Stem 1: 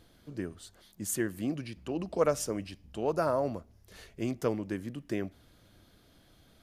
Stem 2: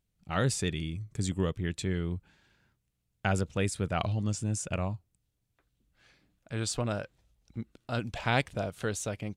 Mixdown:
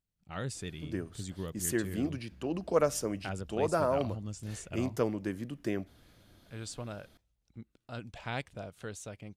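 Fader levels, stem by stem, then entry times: 0.0, −9.5 decibels; 0.55, 0.00 seconds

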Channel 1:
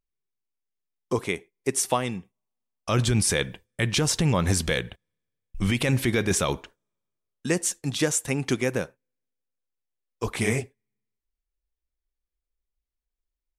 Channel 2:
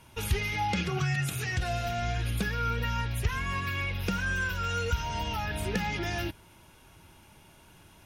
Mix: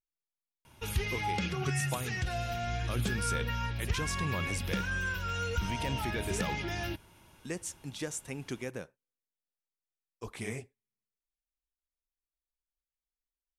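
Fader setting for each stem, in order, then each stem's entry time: −13.5, −3.5 decibels; 0.00, 0.65 seconds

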